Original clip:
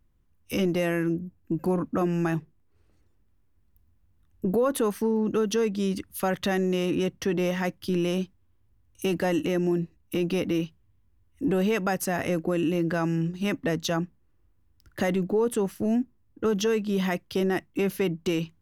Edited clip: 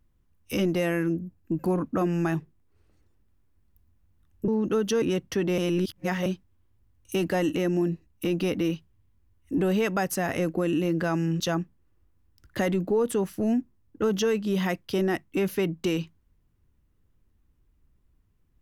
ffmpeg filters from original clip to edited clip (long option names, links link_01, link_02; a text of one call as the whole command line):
ffmpeg -i in.wav -filter_complex "[0:a]asplit=6[link_01][link_02][link_03][link_04][link_05][link_06];[link_01]atrim=end=4.482[link_07];[link_02]atrim=start=5.108:end=5.652[link_08];[link_03]atrim=start=6.918:end=7.482[link_09];[link_04]atrim=start=7.478:end=8.162,asetpts=PTS-STARTPTS,areverse[link_10];[link_05]atrim=start=8.158:end=13.302[link_11];[link_06]atrim=start=13.818[link_12];[link_07][link_08]acrossfade=duration=0.004:curve1=hsin:curve2=hsin[link_13];[link_13][link_09]acrossfade=duration=0.004:curve1=hsin:curve2=hsin[link_14];[link_14][link_10]acrossfade=duration=0.004:curve1=hsin:curve2=hsin[link_15];[link_15][link_11]acrossfade=duration=0.004:curve1=hsin:curve2=hsin[link_16];[link_16][link_12]acrossfade=duration=0.004:curve1=hsin:curve2=hsin" out.wav